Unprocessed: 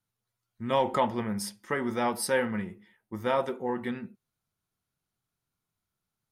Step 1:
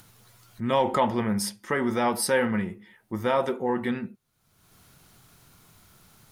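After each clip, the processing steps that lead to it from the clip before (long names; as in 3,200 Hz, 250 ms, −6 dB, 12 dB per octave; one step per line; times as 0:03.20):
in parallel at 0 dB: brickwall limiter −24.5 dBFS, peak gain reduction 11 dB
on the sum: upward compression, threshold −36 dBFS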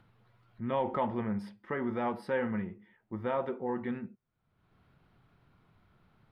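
high-frequency loss of the air 450 metres
level −6.5 dB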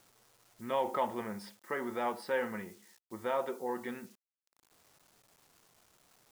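low-pass that shuts in the quiet parts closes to 970 Hz, open at −30.5 dBFS
bit reduction 11 bits
bass and treble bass −14 dB, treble +12 dB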